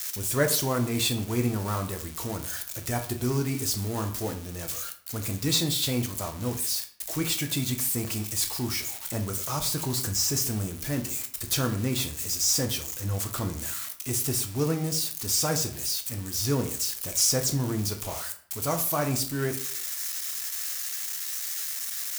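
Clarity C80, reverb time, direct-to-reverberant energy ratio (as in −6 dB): 15.0 dB, 0.55 s, 5.0 dB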